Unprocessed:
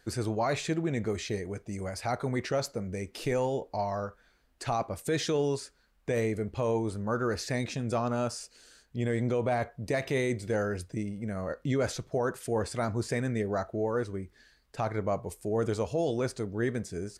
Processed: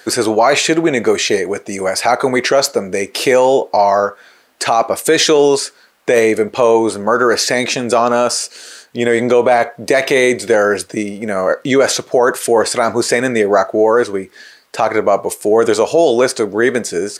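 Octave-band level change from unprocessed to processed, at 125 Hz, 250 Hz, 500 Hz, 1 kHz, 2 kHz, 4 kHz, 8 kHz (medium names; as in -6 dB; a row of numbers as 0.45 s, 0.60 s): +2.5 dB, +14.0 dB, +18.5 dB, +19.0 dB, +20.0 dB, +21.5 dB, +21.5 dB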